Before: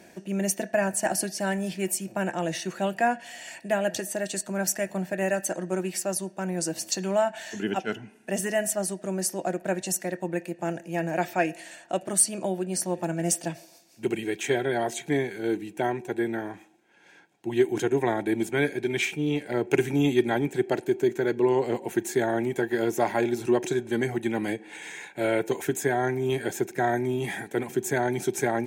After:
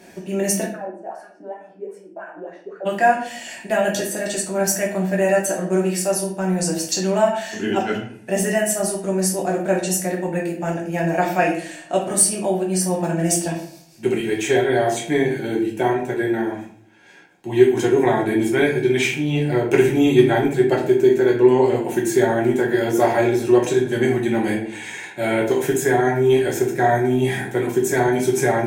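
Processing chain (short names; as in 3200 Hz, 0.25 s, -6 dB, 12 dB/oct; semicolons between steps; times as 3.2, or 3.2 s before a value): 0.69–2.85 wah 1.8 Hz -> 4.6 Hz 290–1600 Hz, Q 9.9; shoebox room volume 63 m³, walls mixed, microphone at 1 m; gain +2.5 dB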